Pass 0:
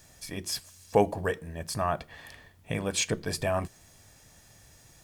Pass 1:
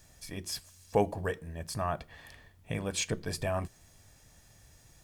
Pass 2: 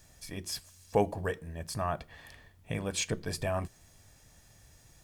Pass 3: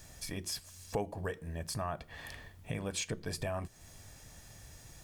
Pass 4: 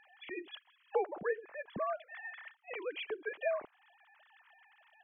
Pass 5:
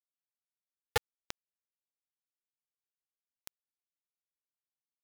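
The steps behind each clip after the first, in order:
low shelf 83 Hz +7.5 dB; gain -4.5 dB
nothing audible
compressor 2.5:1, threshold -44 dBFS, peak gain reduction 15.5 dB; gain +5.5 dB
sine-wave speech
bit-crush 4-bit; gain +1 dB

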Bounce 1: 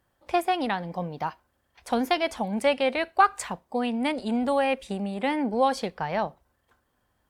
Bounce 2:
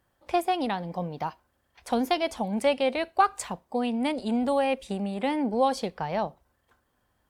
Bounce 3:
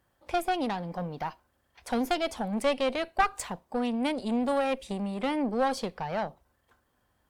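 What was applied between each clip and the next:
dynamic EQ 1700 Hz, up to -6 dB, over -41 dBFS, Q 1.2
one diode to ground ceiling -26.5 dBFS

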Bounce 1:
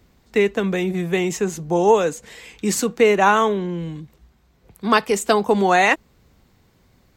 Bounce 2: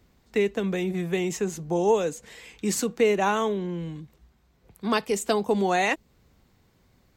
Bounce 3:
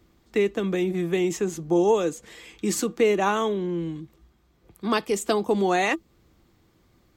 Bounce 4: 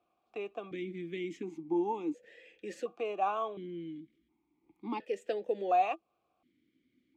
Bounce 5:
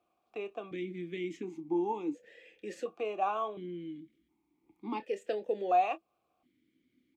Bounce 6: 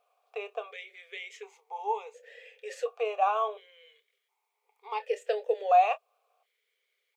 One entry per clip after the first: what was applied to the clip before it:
dynamic EQ 1300 Hz, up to -6 dB, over -30 dBFS, Q 0.86; gain -5 dB
small resonant body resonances 330/1200/3300 Hz, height 11 dB, ringing for 85 ms
vowel sequencer 1.4 Hz
doubler 28 ms -13 dB
brick-wall FIR high-pass 410 Hz; gain +5.5 dB

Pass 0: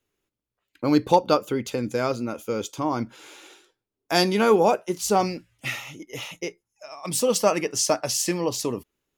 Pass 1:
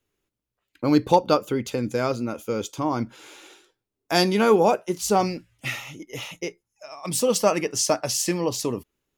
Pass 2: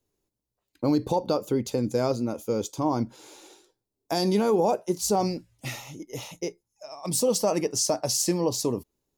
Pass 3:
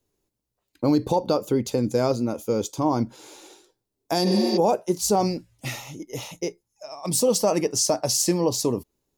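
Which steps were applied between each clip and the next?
low shelf 170 Hz +3.5 dB
band shelf 2000 Hz -9 dB; limiter -14 dBFS, peak gain reduction 10 dB
spectral repair 4.29–4.55, 260–7100 Hz before; gain +3 dB

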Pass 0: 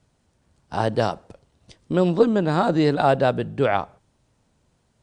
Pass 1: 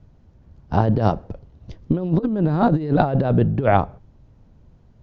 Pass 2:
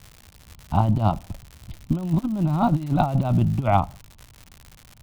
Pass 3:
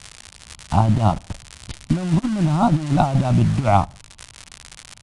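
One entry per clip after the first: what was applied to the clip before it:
steep low-pass 6900 Hz 72 dB/oct; tilt -3.5 dB/oct; negative-ratio compressor -17 dBFS, ratio -0.5
fixed phaser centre 1700 Hz, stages 6; crackle 180/s -32 dBFS
in parallel at -6.5 dB: bit-crush 5-bit; on the sum: downsampling 22050 Hz; mismatched tape noise reduction encoder only

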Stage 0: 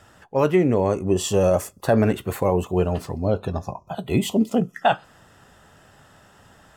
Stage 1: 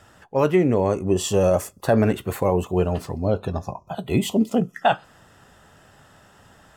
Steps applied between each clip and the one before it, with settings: nothing audible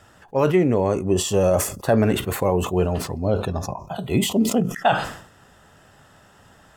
sustainer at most 91 dB/s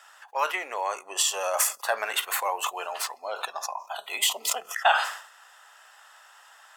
HPF 850 Hz 24 dB/oct; gain +2.5 dB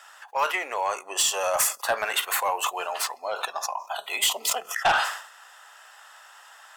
soft clip -18.5 dBFS, distortion -13 dB; gain +3.5 dB

